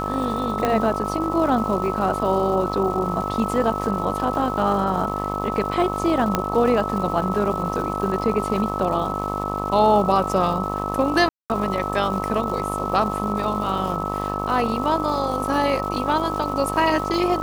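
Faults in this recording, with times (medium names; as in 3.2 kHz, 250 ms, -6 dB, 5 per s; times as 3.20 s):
buzz 50 Hz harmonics 25 -28 dBFS
crackle 460 per s -32 dBFS
whine 1.3 kHz -27 dBFS
0.65 s: pop -8 dBFS
6.35 s: pop -5 dBFS
11.29–11.50 s: dropout 208 ms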